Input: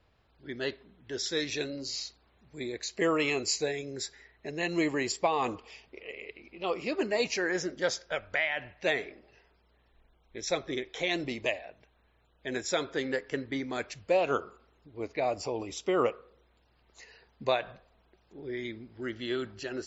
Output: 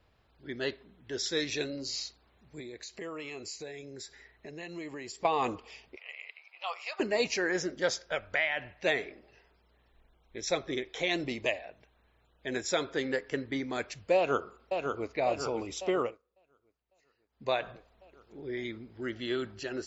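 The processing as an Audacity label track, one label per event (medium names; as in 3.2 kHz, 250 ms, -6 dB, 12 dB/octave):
2.600000	5.250000	compression 2.5:1, threshold -44 dBFS
5.960000	7.000000	steep high-pass 700 Hz
14.160000	15.110000	echo throw 550 ms, feedback 60%, level -4.5 dB
15.880000	17.600000	dip -23 dB, fades 0.31 s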